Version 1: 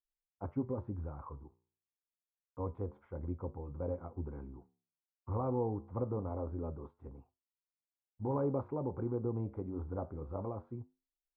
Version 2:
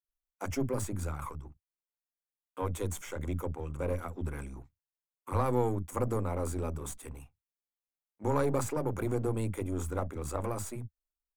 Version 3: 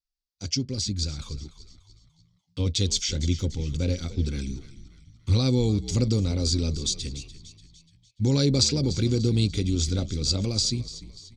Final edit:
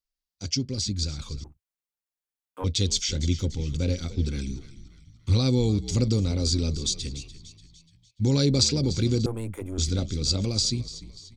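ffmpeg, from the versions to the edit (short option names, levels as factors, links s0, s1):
-filter_complex "[1:a]asplit=2[s0][s1];[2:a]asplit=3[s2][s3][s4];[s2]atrim=end=1.442[s5];[s0]atrim=start=1.438:end=2.642[s6];[s3]atrim=start=2.638:end=9.262[s7];[s1]atrim=start=9.258:end=9.782[s8];[s4]atrim=start=9.778[s9];[s5][s6]acrossfade=d=0.004:c1=hsin:c2=hsin[s10];[s10][s7]acrossfade=d=0.004:c1=hsin:c2=hsin[s11];[s11][s8]acrossfade=d=0.004:c1=hsin:c2=hsin[s12];[s12][s9]acrossfade=d=0.004:c1=hsin:c2=hsin"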